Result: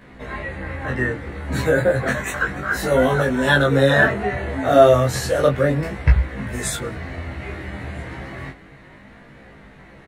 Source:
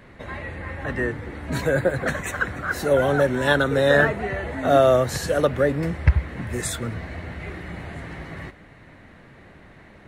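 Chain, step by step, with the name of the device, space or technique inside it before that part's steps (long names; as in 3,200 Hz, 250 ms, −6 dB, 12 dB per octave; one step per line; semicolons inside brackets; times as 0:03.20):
double-tracked vocal (double-tracking delay 15 ms −2 dB; chorus effect 0.32 Hz, delay 19 ms, depth 6.3 ms)
0:02.73–0:03.22: double-tracking delay 16 ms −5 dB
level +4 dB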